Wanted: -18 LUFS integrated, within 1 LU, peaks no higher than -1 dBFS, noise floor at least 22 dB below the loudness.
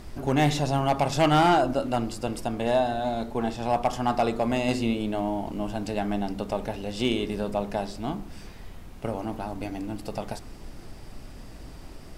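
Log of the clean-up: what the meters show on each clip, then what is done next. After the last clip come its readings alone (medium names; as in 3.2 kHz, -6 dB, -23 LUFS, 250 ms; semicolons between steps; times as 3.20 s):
clipped samples 0.4%; clipping level -14.5 dBFS; noise floor -43 dBFS; noise floor target -49 dBFS; loudness -27.0 LUFS; peak level -14.5 dBFS; loudness target -18.0 LUFS
-> clip repair -14.5 dBFS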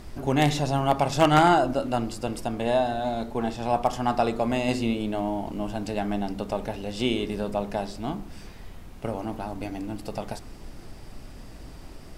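clipped samples 0.0%; noise floor -43 dBFS; noise floor target -49 dBFS
-> noise print and reduce 6 dB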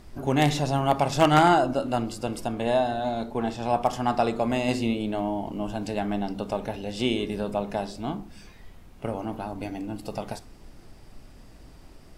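noise floor -49 dBFS; loudness -26.5 LUFS; peak level -5.5 dBFS; loudness target -18.0 LUFS
-> trim +8.5 dB; peak limiter -1 dBFS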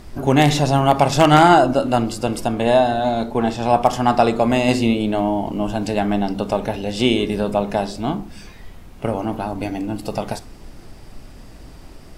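loudness -18.5 LUFS; peak level -1.0 dBFS; noise floor -41 dBFS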